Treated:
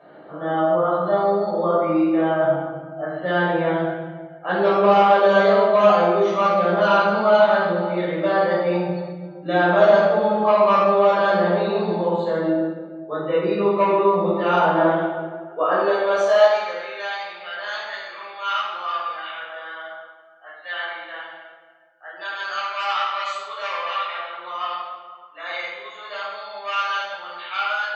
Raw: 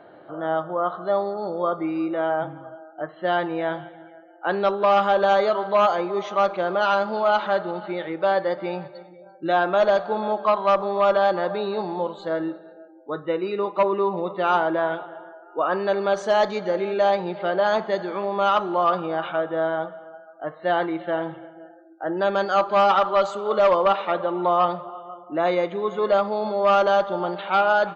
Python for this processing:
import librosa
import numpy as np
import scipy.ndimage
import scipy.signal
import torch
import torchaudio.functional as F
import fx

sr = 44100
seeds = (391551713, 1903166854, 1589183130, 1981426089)

y = fx.room_shoebox(x, sr, seeds[0], volume_m3=820.0, walls='mixed', distance_m=5.9)
y = fx.filter_sweep_highpass(y, sr, from_hz=160.0, to_hz=1800.0, start_s=15.31, end_s=17.14, q=0.91)
y = y * librosa.db_to_amplitude(-7.5)